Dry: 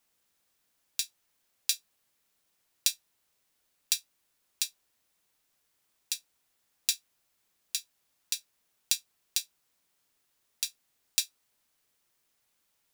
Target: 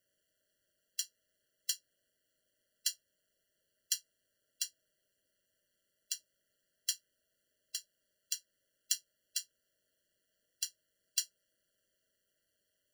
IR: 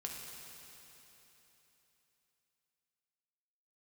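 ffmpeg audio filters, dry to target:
-af "aeval=exprs='val(0)*sin(2*PI*95*n/s)':c=same,equalizer=f=630:t=o:w=0.67:g=9,equalizer=f=2.5k:t=o:w=0.67:g=3,equalizer=f=16k:t=o:w=0.67:g=-3,afftfilt=real='re*eq(mod(floor(b*sr/1024/680),2),0)':imag='im*eq(mod(floor(b*sr/1024/680),2),0)':win_size=1024:overlap=0.75"

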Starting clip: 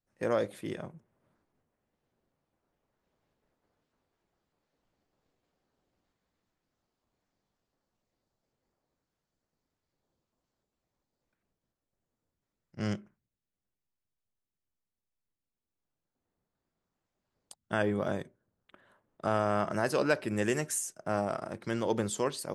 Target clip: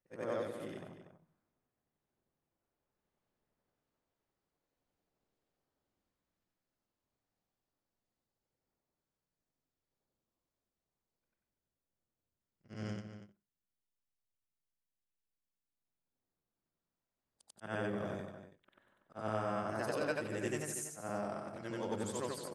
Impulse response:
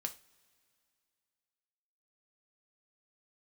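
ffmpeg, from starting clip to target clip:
-filter_complex "[0:a]afftfilt=real='re':imag='-im':win_size=8192:overlap=0.75,asplit=2[a][b];[b]adelay=239.1,volume=-10dB,highshelf=f=4k:g=-5.38[c];[a][c]amix=inputs=2:normalize=0,volume=-3.5dB"

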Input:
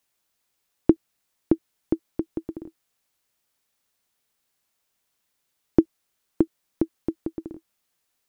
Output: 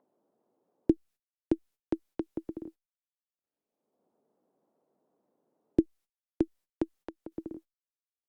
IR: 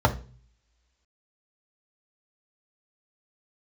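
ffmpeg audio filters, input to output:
-filter_complex "[0:a]agate=range=-38dB:threshold=-47dB:ratio=16:detection=peak,acrossover=split=190|690[a][b][c];[b]acompressor=mode=upward:threshold=-24dB:ratio=2.5[d];[c]alimiter=limit=-22dB:level=0:latency=1:release=313[e];[a][d][e]amix=inputs=3:normalize=0,asettb=1/sr,asplit=3[f][g][h];[f]atrim=end=6.834[i];[g]atrim=start=6.83:end=7.32,asetpts=PTS-STARTPTS,afade=t=in:d=0.004:c=qsin,afade=t=out:st=0.486:d=0.004:c=qsin,acompressor=threshold=-33dB:ratio=6[j];[h]atrim=start=7.316[k];[i][j]acrossfade=d=0.004:c1=hsin:c2=qsin[l];[l][k]acrossfade=d=0.004:c1=qsin:c2=hsin,volume=-7dB" -ar 48000 -c:a libopus -b:a 256k

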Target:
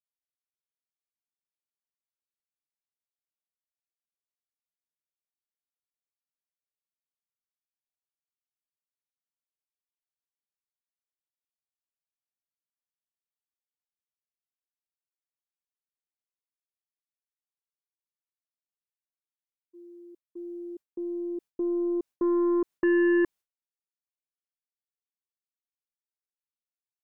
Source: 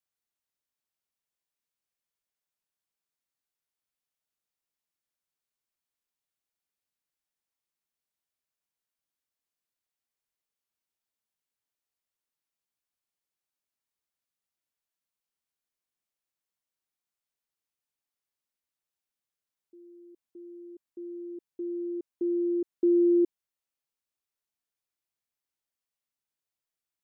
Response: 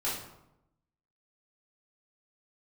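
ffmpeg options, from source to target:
-af "aeval=exprs='0.126*(cos(1*acos(clip(val(0)/0.126,-1,1)))-cos(1*PI/2))+0.0316*(cos(5*acos(clip(val(0)/0.126,-1,1)))-cos(5*PI/2))+0.00316*(cos(8*acos(clip(val(0)/0.126,-1,1)))-cos(8*PI/2))':c=same,agate=range=-33dB:threshold=-41dB:ratio=3:detection=peak"

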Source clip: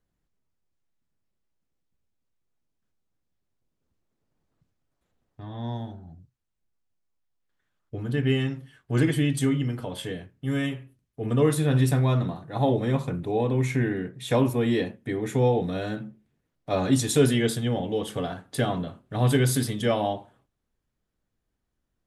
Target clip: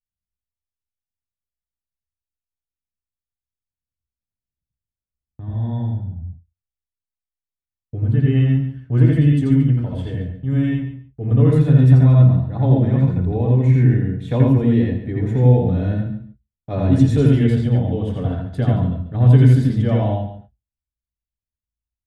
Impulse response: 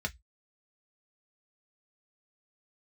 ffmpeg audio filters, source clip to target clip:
-filter_complex "[0:a]aemphasis=mode=reproduction:type=riaa,aecho=1:1:141|282:0.251|0.0377,agate=range=-30dB:threshold=-41dB:ratio=16:detection=peak,asplit=2[a][b];[1:a]atrim=start_sample=2205,adelay=83[c];[b][c]afir=irnorm=-1:irlink=0,volume=-3dB[d];[a][d]amix=inputs=2:normalize=0,volume=-4dB"

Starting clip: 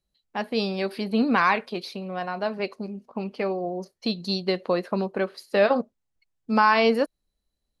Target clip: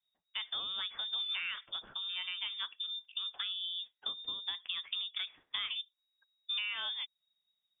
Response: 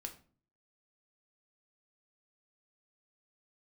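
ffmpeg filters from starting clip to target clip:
-af "equalizer=f=550:w=3.5:g=-11,acompressor=threshold=-31dB:ratio=6,lowpass=f=3.2k:t=q:w=0.5098,lowpass=f=3.2k:t=q:w=0.6013,lowpass=f=3.2k:t=q:w=0.9,lowpass=f=3.2k:t=q:w=2.563,afreqshift=-3800,volume=-4dB"

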